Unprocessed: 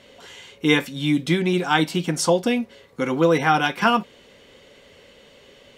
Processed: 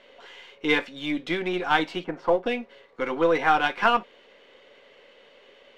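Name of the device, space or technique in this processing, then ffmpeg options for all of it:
crystal radio: -filter_complex "[0:a]asplit=3[link_01][link_02][link_03];[link_01]afade=type=out:start_time=2.03:duration=0.02[link_04];[link_02]lowpass=1500,afade=type=in:start_time=2.03:duration=0.02,afade=type=out:start_time=2.45:duration=0.02[link_05];[link_03]afade=type=in:start_time=2.45:duration=0.02[link_06];[link_04][link_05][link_06]amix=inputs=3:normalize=0,highpass=400,lowpass=3100,aeval=exprs='if(lt(val(0),0),0.708*val(0),val(0))':channel_layout=same"

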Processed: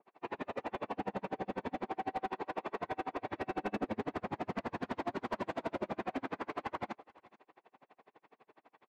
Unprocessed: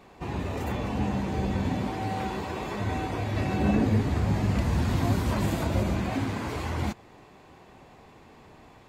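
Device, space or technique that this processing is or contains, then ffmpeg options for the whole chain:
helicopter radio: -af "agate=range=-7dB:threshold=-43dB:ratio=16:detection=peak,highpass=390,lowpass=2600,aeval=exprs='val(0)*pow(10,-39*(0.5-0.5*cos(2*PI*12*n/s))/20)':channel_layout=same,asoftclip=type=hard:threshold=-33dB,aecho=1:1:432:0.0631,adynamicequalizer=threshold=0.002:dfrequency=1500:dqfactor=0.7:tfrequency=1500:tqfactor=0.7:attack=5:release=100:ratio=0.375:range=2:mode=cutabove:tftype=highshelf,volume=4dB"

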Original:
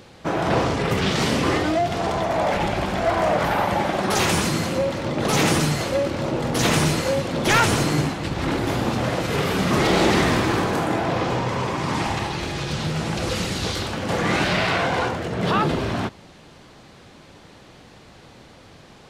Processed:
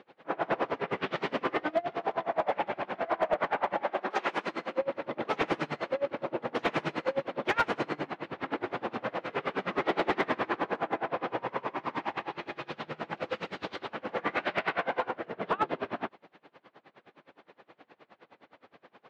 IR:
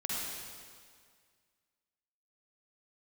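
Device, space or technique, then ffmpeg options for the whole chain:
helicopter radio: -filter_complex "[0:a]highpass=390,lowpass=2600,aeval=exprs='val(0)*pow(10,-27*(0.5-0.5*cos(2*PI*9.6*n/s))/20)':channel_layout=same,asoftclip=type=hard:threshold=-17.5dB,bass=frequency=250:gain=3,treble=frequency=4000:gain=-7,asettb=1/sr,asplit=3[link_01][link_02][link_03];[link_01]atrim=end=3.824[link_04];[link_02]atrim=start=3.82:end=4.82,asetpts=PTS-STARTPTS,afade=type=in:duration=0.004:curve=qsin,afade=type=out:start_time=0.996:duration=0.004:curve=qsin,highpass=230[link_05];[link_03]atrim=start=4.816[link_06];[link_04][link_05]acrossfade=duration=0.004:curve1=hsin:curve2=qsin[link_07];[link_07][link_06]acrossfade=duration=0.004:curve1=qsin:curve2=hsin,volume=-1.5dB"

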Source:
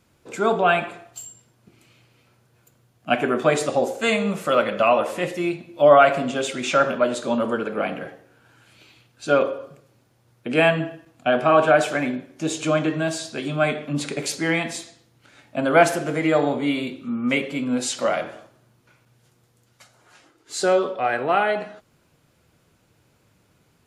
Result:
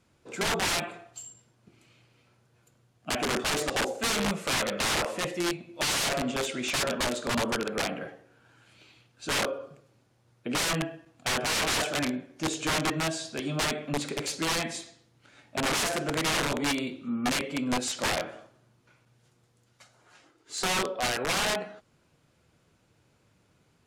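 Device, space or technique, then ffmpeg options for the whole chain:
overflowing digital effects unit: -af "aeval=exprs='(mod(7.08*val(0)+1,2)-1)/7.08':channel_layout=same,lowpass=10000,volume=-4.5dB"

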